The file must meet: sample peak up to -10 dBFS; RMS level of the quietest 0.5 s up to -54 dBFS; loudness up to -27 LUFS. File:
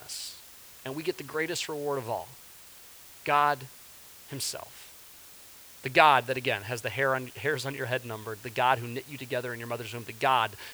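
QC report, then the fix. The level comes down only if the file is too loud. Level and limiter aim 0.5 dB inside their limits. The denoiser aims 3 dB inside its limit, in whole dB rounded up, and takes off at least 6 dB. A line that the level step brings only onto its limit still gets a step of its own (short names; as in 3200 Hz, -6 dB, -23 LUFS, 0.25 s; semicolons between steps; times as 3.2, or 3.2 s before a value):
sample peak -3.5 dBFS: fail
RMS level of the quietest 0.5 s -50 dBFS: fail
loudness -29.0 LUFS: OK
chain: denoiser 7 dB, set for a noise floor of -50 dBFS; limiter -10.5 dBFS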